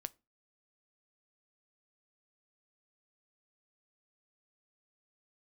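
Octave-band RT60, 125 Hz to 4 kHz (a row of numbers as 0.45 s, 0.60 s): 0.35 s, 0.35 s, 0.30 s, 0.25 s, 0.25 s, 0.20 s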